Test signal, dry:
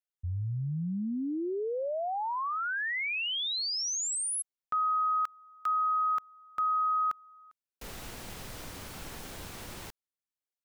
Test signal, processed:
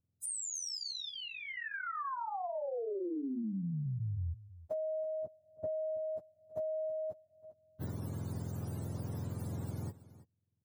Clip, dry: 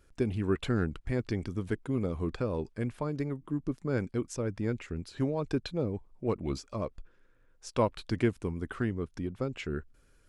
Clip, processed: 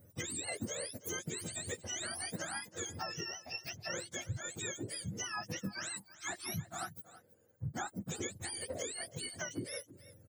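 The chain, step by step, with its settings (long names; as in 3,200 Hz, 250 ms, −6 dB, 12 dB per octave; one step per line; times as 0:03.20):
frequency axis turned over on the octave scale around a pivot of 890 Hz
parametric band 2,700 Hz −12.5 dB 1.6 octaves
downward compressor 6 to 1, threshold −42 dBFS
on a send: single-tap delay 327 ms −17 dB
on the sum: level +5.5 dB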